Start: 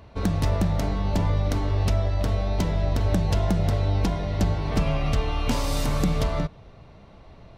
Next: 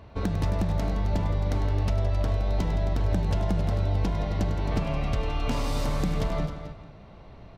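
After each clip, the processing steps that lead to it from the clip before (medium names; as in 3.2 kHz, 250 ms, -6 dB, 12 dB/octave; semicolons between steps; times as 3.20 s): treble shelf 5 kHz -6.5 dB; compression 2.5:1, threshold -25 dBFS, peak gain reduction 6 dB; multi-tap echo 100/167/266/438 ms -11.5/-12.5/-11/-19.5 dB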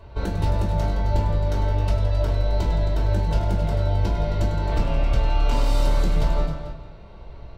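reverberation RT60 0.30 s, pre-delay 3 ms, DRR -3 dB; trim -4.5 dB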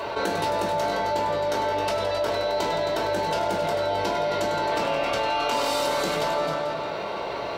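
high-pass 440 Hz 12 dB/octave; level flattener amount 70%; trim +4.5 dB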